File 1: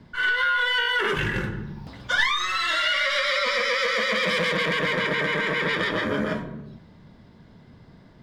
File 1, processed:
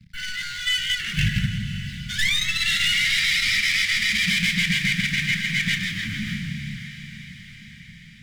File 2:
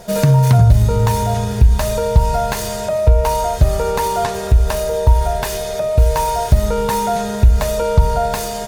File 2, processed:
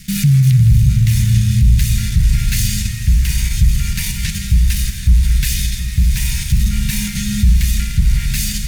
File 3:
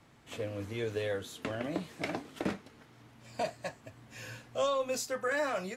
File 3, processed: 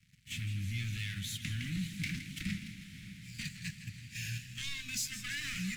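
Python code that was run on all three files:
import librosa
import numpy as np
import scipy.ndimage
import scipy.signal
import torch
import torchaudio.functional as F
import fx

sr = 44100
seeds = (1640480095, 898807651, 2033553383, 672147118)

p1 = fx.leveller(x, sr, passes=3)
p2 = scipy.signal.sosfilt(scipy.signal.cheby1(3, 1.0, [180.0, 2100.0], 'bandstop', fs=sr, output='sos'), p1)
p3 = fx.level_steps(p2, sr, step_db=20)
p4 = p2 + (p3 * 10.0 ** (1.0 / 20.0))
p5 = fx.low_shelf(p4, sr, hz=400.0, db=3.5)
p6 = p5 + fx.echo_diffused(p5, sr, ms=571, feedback_pct=59, wet_db=-13.0, dry=0)
p7 = fx.echo_warbled(p6, sr, ms=163, feedback_pct=51, rate_hz=2.8, cents=116, wet_db=-11.5)
y = p7 * 10.0 ** (-9.0 / 20.0)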